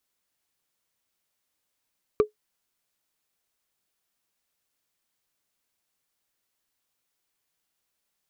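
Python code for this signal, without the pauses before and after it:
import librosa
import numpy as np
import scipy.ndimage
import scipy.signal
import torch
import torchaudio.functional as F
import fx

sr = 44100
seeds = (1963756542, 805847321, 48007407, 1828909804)

y = fx.strike_wood(sr, length_s=0.45, level_db=-11, body='bar', hz=424.0, decay_s=0.12, tilt_db=9, modes=5)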